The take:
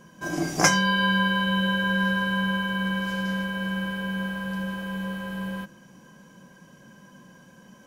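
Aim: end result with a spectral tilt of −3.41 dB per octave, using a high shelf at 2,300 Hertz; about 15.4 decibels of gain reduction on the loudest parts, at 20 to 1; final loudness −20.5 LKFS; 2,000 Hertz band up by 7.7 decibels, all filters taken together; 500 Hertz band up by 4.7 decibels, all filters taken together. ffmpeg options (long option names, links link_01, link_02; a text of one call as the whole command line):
ffmpeg -i in.wav -af "equalizer=frequency=500:width_type=o:gain=4.5,equalizer=frequency=2000:width_type=o:gain=7,highshelf=frequency=2300:gain=7.5,acompressor=threshold=-22dB:ratio=20,volume=5.5dB" out.wav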